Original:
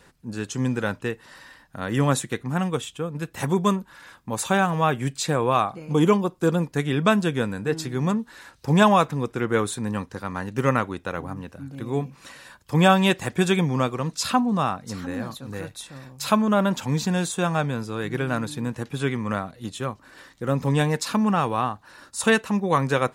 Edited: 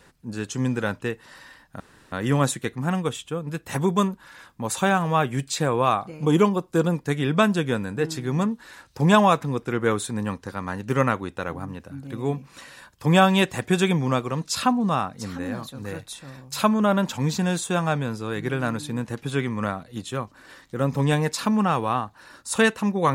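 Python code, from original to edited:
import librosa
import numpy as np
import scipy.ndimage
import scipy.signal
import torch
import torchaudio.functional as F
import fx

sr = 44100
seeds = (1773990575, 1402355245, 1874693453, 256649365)

y = fx.edit(x, sr, fx.insert_room_tone(at_s=1.8, length_s=0.32), tone=tone)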